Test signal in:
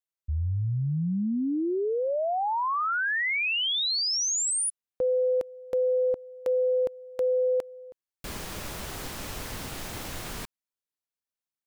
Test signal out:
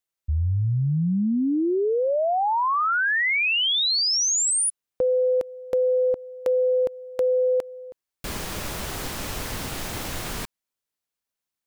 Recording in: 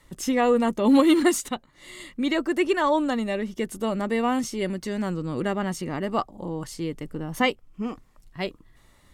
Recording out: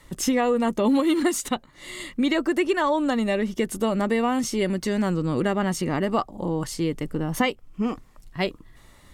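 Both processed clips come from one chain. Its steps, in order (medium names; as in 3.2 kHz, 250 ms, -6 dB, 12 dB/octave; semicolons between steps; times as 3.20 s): compression 5:1, threshold -24 dBFS; trim +5.5 dB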